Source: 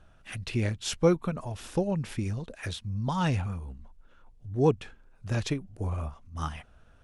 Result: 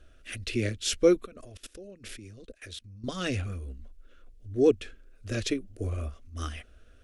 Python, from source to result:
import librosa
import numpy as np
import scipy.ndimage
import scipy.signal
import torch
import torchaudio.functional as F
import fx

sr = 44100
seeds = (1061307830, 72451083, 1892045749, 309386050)

y = fx.level_steps(x, sr, step_db=22, at=(1.25, 3.04))
y = fx.fixed_phaser(y, sr, hz=370.0, stages=4)
y = y * librosa.db_to_amplitude(4.0)